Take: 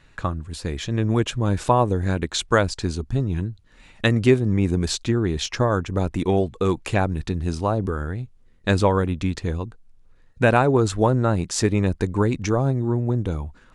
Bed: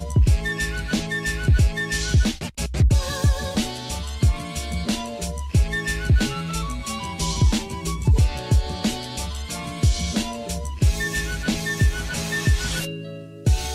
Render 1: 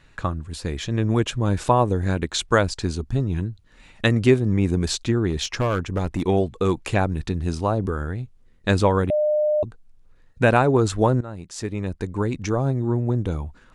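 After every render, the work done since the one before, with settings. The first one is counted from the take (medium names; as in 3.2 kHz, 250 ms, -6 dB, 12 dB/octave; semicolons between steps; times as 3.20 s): 5.30–6.26 s: hard clipper -17 dBFS; 9.10–9.63 s: bleep 604 Hz -17 dBFS; 11.21–12.92 s: fade in, from -17 dB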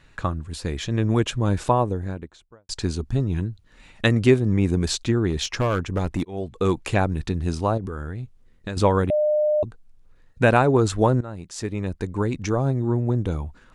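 1.41–2.69 s: studio fade out; 6.25–6.65 s: fade in; 7.77–8.77 s: compression, threshold -26 dBFS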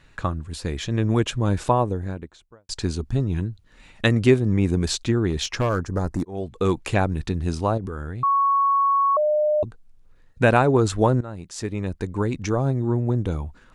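5.69–6.35 s: high-order bell 2.8 kHz -14 dB 1 oct; 8.23–9.17 s: bleep 1.11 kHz -16 dBFS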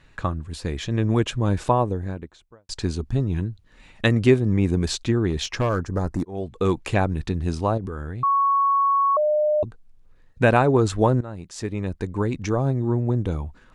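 treble shelf 5.5 kHz -4 dB; band-stop 1.4 kHz, Q 26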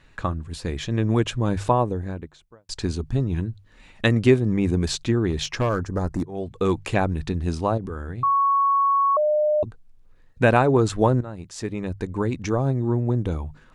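hum notches 50/100/150 Hz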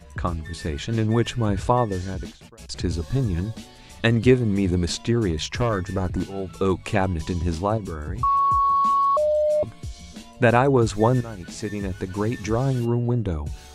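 add bed -16.5 dB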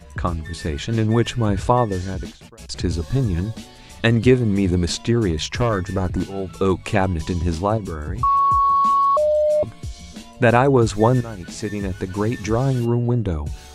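trim +3 dB; peak limiter -3 dBFS, peak gain reduction 1.5 dB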